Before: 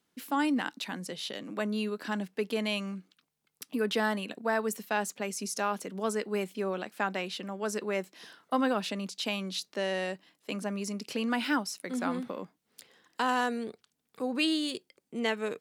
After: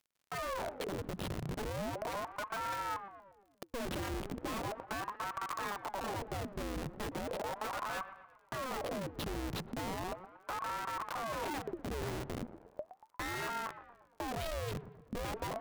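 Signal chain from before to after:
fade in at the beginning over 0.83 s
high-shelf EQ 3,600 Hz −9.5 dB
in parallel at 0 dB: downward compressor 16 to 1, threshold −40 dBFS, peak gain reduction 18.5 dB
on the sum: comparator with hysteresis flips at −32 dBFS
surface crackle 63 per second −53 dBFS
on a send: delay with a low-pass on its return 117 ms, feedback 51%, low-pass 1,300 Hz, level −12 dB
on the sum: ring modulator whose carrier an LFO sweeps 640 Hz, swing 80%, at 0.37 Hz
level −3 dB

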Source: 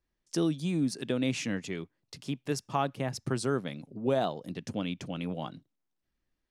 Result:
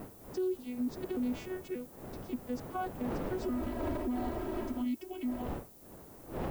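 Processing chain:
vocoder with an arpeggio as carrier bare fifth, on B3, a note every 290 ms
wind on the microphone 490 Hz −39 dBFS
0:03.42–0:05.42: comb filter 3.1 ms, depth 87%
brickwall limiter −27.5 dBFS, peak gain reduction 13.5 dB
background noise violet −58 dBFS

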